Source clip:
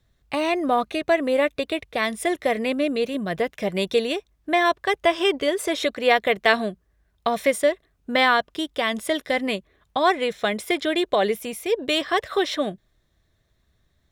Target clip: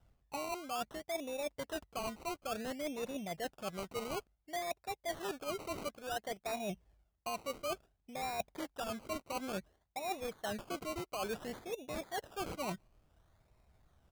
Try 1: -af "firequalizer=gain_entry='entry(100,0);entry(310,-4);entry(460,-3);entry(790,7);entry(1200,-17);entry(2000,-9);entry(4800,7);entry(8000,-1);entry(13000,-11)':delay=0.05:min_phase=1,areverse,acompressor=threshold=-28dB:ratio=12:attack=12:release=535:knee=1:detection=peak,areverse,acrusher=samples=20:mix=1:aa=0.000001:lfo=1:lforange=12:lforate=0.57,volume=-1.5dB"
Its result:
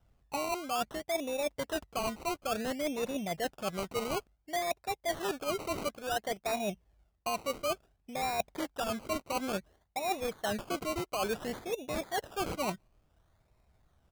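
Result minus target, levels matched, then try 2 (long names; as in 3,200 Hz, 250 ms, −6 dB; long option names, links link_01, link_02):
downward compressor: peak gain reduction −6 dB
-af "firequalizer=gain_entry='entry(100,0);entry(310,-4);entry(460,-3);entry(790,7);entry(1200,-17);entry(2000,-9);entry(4800,7);entry(8000,-1);entry(13000,-11)':delay=0.05:min_phase=1,areverse,acompressor=threshold=-34.5dB:ratio=12:attack=12:release=535:knee=1:detection=peak,areverse,acrusher=samples=20:mix=1:aa=0.000001:lfo=1:lforange=12:lforate=0.57,volume=-1.5dB"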